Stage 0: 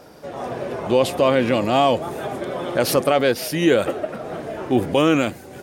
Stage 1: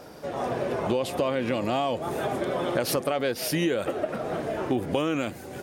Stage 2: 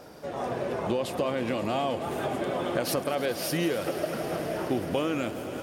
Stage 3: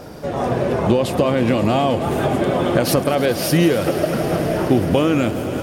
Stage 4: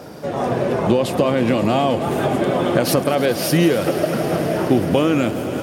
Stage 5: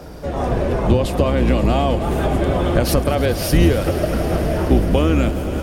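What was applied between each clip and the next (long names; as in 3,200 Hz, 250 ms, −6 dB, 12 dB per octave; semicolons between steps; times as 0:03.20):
downward compressor 10 to 1, threshold −22 dBFS, peak gain reduction 11 dB
echo that builds up and dies away 106 ms, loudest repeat 5, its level −16.5 dB; level −2.5 dB
low-shelf EQ 220 Hz +10 dB; level +9 dB
high-pass filter 110 Hz
sub-octave generator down 2 octaves, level +4 dB; level −1.5 dB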